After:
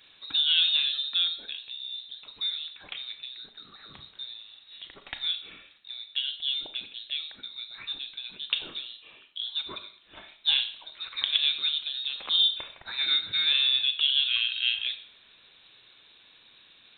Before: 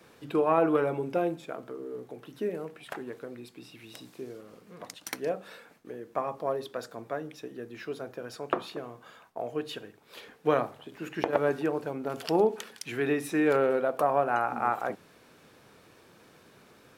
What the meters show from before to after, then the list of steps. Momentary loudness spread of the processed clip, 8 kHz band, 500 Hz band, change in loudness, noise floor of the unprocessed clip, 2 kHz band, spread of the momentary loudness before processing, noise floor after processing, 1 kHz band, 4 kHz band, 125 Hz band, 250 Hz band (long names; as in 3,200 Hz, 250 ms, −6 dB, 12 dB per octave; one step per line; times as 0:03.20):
20 LU, below −30 dB, −29.0 dB, +4.0 dB, −58 dBFS, +2.5 dB, 20 LU, −57 dBFS, −19.0 dB, +24.5 dB, below −15 dB, −25.5 dB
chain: voice inversion scrambler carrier 4,000 Hz
four-comb reverb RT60 0.54 s, combs from 27 ms, DRR 9 dB